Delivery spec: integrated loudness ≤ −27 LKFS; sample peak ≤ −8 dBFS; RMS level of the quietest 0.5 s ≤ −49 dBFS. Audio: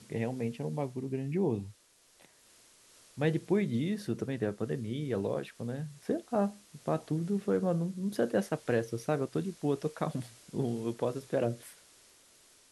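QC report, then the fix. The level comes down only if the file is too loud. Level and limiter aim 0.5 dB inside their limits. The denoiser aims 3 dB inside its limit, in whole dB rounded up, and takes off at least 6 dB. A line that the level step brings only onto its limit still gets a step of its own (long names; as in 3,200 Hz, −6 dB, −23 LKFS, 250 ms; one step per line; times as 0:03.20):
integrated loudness −33.5 LKFS: in spec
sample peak −16.0 dBFS: in spec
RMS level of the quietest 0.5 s −64 dBFS: in spec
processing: no processing needed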